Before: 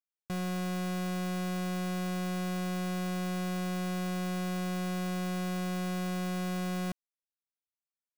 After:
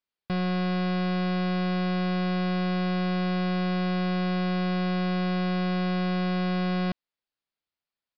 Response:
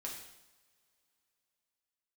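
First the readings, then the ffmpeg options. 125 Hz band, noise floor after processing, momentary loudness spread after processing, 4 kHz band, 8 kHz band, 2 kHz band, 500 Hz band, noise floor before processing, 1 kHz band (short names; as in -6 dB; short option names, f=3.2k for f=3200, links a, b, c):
n/a, under -85 dBFS, 0 LU, +6.5 dB, under -20 dB, +7.0 dB, +7.0 dB, under -85 dBFS, +7.0 dB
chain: -af "aresample=11025,aresample=44100,volume=7dB"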